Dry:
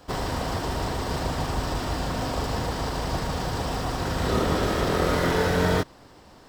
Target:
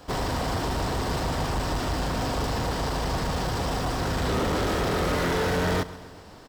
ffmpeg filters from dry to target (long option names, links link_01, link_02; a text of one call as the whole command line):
ffmpeg -i in.wav -af "asoftclip=type=tanh:threshold=-24.5dB,aecho=1:1:134|268|402|536|670:0.126|0.073|0.0424|0.0246|0.0142,volume=3dB" out.wav